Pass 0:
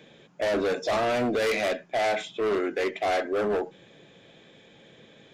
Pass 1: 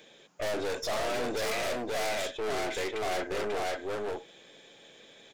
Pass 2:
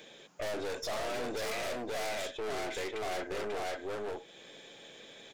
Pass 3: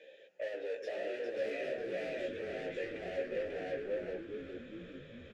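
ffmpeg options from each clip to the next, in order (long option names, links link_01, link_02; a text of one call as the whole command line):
ffmpeg -i in.wav -af "bass=frequency=250:gain=-12,treble=frequency=4000:gain=9,aecho=1:1:541:0.708,aeval=exprs='(tanh(28.2*val(0)+0.55)-tanh(0.55))/28.2':channel_layout=same" out.wav
ffmpeg -i in.wav -af "acompressor=threshold=-48dB:ratio=1.5,volume=2.5dB" out.wav
ffmpeg -i in.wav -filter_complex "[0:a]asplit=3[link_01][link_02][link_03];[link_01]bandpass=frequency=530:width_type=q:width=8,volume=0dB[link_04];[link_02]bandpass=frequency=1840:width_type=q:width=8,volume=-6dB[link_05];[link_03]bandpass=frequency=2480:width_type=q:width=8,volume=-9dB[link_06];[link_04][link_05][link_06]amix=inputs=3:normalize=0,flanger=delay=15:depth=2.6:speed=0.54,asplit=9[link_07][link_08][link_09][link_10][link_11][link_12][link_13][link_14][link_15];[link_08]adelay=410,afreqshift=-93,volume=-7dB[link_16];[link_09]adelay=820,afreqshift=-186,volume=-11.6dB[link_17];[link_10]adelay=1230,afreqshift=-279,volume=-16.2dB[link_18];[link_11]adelay=1640,afreqshift=-372,volume=-20.7dB[link_19];[link_12]adelay=2050,afreqshift=-465,volume=-25.3dB[link_20];[link_13]adelay=2460,afreqshift=-558,volume=-29.9dB[link_21];[link_14]adelay=2870,afreqshift=-651,volume=-34.5dB[link_22];[link_15]adelay=3280,afreqshift=-744,volume=-39.1dB[link_23];[link_07][link_16][link_17][link_18][link_19][link_20][link_21][link_22][link_23]amix=inputs=9:normalize=0,volume=8.5dB" out.wav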